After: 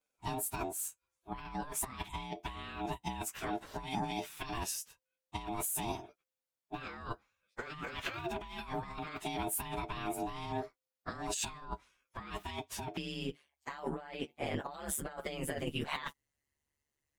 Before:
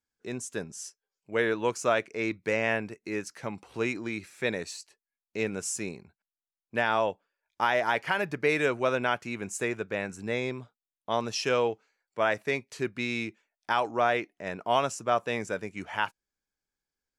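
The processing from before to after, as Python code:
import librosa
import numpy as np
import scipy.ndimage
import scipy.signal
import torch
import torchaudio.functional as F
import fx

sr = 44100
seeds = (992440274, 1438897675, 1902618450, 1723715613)

y = fx.partial_stretch(x, sr, pct=110)
y = fx.over_compress(y, sr, threshold_db=-40.0, ratio=-1.0)
y = fx.ring_mod(y, sr, carrier_hz=fx.steps((0.0, 520.0), (12.97, 72.0)))
y = F.gain(torch.from_numpy(y), 2.5).numpy()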